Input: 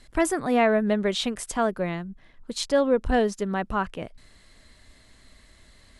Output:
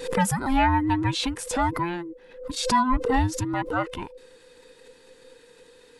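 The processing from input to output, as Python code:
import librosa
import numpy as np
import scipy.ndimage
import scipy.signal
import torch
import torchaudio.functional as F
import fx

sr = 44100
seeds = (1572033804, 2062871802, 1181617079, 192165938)

y = fx.band_invert(x, sr, width_hz=500)
y = fx.pre_swell(y, sr, db_per_s=95.0)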